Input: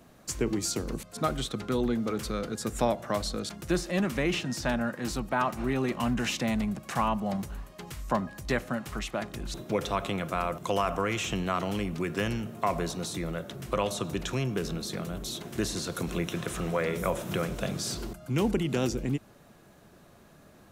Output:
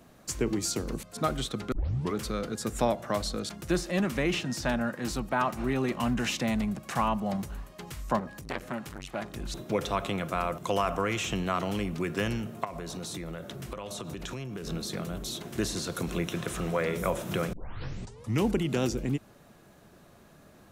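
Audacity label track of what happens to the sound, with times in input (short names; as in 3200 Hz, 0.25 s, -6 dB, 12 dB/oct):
1.720000	1.720000	tape start 0.43 s
8.190000	9.360000	core saturation saturates under 1400 Hz
12.640000	14.670000	compressor 16:1, threshold -33 dBFS
17.530000	17.530000	tape start 0.90 s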